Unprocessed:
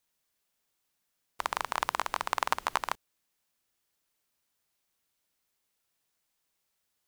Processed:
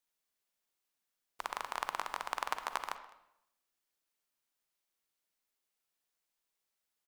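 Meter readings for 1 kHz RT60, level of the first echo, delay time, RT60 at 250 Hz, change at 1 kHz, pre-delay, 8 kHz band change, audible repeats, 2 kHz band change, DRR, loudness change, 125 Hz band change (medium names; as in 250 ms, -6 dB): 0.75 s, -22.5 dB, 207 ms, 0.85 s, -6.5 dB, 38 ms, -7.0 dB, 1, -6.5 dB, 10.0 dB, -6.5 dB, under -10 dB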